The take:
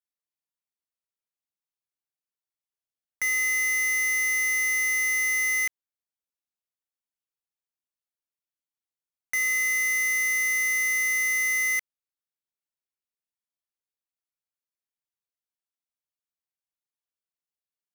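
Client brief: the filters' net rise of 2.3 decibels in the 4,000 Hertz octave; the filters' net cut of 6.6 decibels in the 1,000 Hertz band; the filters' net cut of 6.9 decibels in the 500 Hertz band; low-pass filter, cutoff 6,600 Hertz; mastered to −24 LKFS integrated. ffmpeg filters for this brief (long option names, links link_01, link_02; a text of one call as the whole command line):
ffmpeg -i in.wav -af "lowpass=6600,equalizer=frequency=500:width_type=o:gain=-5.5,equalizer=frequency=1000:width_type=o:gain=-9,equalizer=frequency=4000:width_type=o:gain=5" out.wav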